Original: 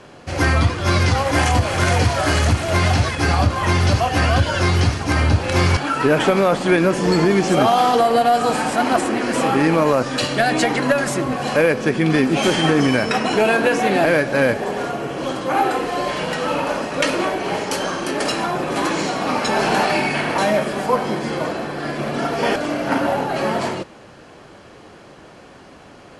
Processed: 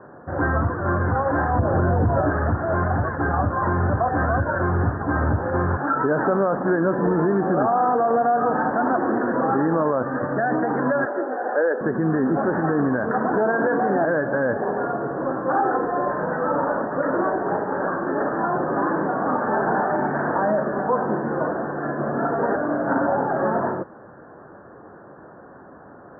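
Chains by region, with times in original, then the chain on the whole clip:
0:01.59–0:02.30: Butterworth band-reject 2,600 Hz, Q 3 + tilt shelving filter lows +8 dB
0:11.05–0:11.81: high-pass filter 340 Hz 24 dB per octave + notch comb filter 1,100 Hz
whole clip: high-pass filter 120 Hz 6 dB per octave; brickwall limiter −11.5 dBFS; Butterworth low-pass 1,700 Hz 96 dB per octave

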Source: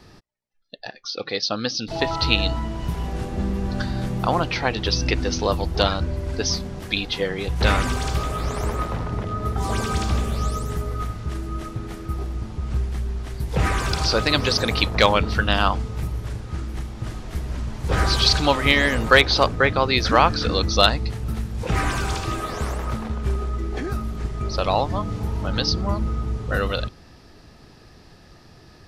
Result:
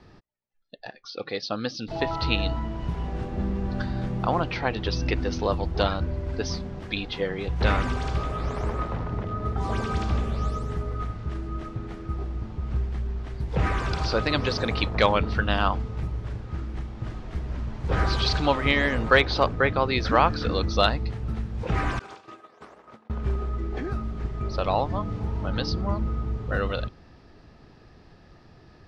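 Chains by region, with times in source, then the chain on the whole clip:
0:21.99–0:23.10: downward expander −17 dBFS + high-pass filter 300 Hz
whole clip: Bessel low-pass filter 5,100 Hz, order 2; high-shelf EQ 3,700 Hz −7.5 dB; level −3 dB

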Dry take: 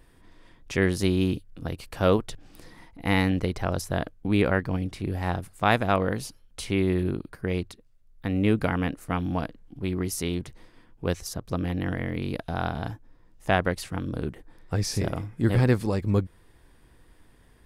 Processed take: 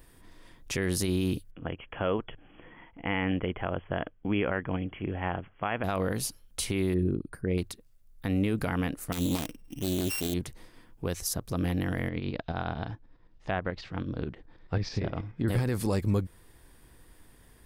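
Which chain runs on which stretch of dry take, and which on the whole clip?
0:01.51–0:05.84: linear-phase brick-wall low-pass 3,400 Hz + low-shelf EQ 190 Hz −7.5 dB
0:06.94–0:07.58: spectral envelope exaggerated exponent 1.5 + parametric band 8,700 Hz +9 dB 0.29 octaves
0:09.12–0:10.34: samples sorted by size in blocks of 16 samples + parametric band 280 Hz +5.5 dB 0.79 octaves + highs frequency-modulated by the lows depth 0.47 ms
0:12.09–0:15.48: low-pass filter 4,500 Hz 24 dB per octave + treble cut that deepens with the level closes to 2,500 Hz, closed at −19.5 dBFS + shaped tremolo saw up 9.3 Hz, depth 60%
whole clip: high-shelf EQ 7,700 Hz +11.5 dB; brickwall limiter −18 dBFS

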